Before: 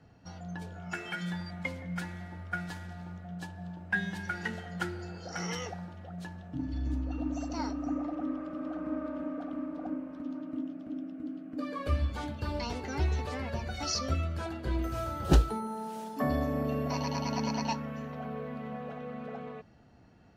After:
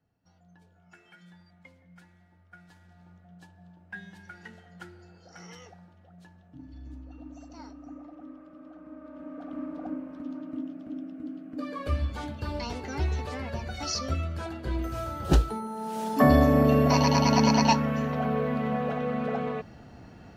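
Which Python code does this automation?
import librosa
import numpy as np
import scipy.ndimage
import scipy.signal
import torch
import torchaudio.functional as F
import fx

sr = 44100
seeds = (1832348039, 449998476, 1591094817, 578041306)

y = fx.gain(x, sr, db=fx.line((2.49, -18.0), (3.09, -11.0), (8.96, -11.0), (9.61, 1.0), (15.73, 1.0), (16.13, 11.0)))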